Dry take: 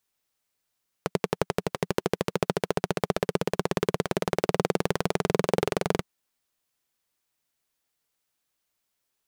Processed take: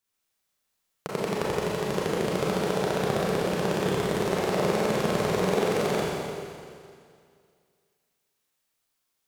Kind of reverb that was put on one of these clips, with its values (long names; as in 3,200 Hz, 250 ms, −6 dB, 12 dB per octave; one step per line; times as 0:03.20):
four-comb reverb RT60 2.2 s, combs from 29 ms, DRR −6.5 dB
level −5.5 dB